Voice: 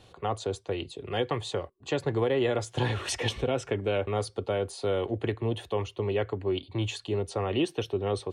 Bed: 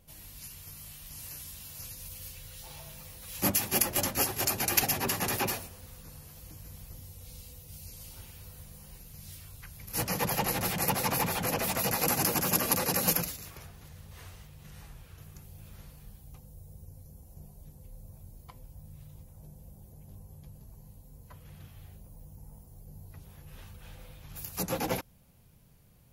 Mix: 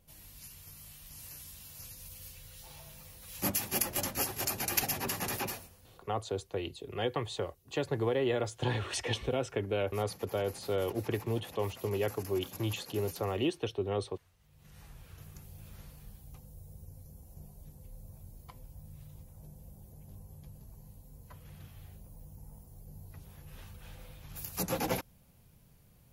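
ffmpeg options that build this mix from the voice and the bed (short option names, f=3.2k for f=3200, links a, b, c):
-filter_complex "[0:a]adelay=5850,volume=-4dB[a];[1:a]volume=15dB,afade=t=out:st=5.33:d=0.75:silence=0.158489,afade=t=in:st=14.39:d=0.71:silence=0.105925[b];[a][b]amix=inputs=2:normalize=0"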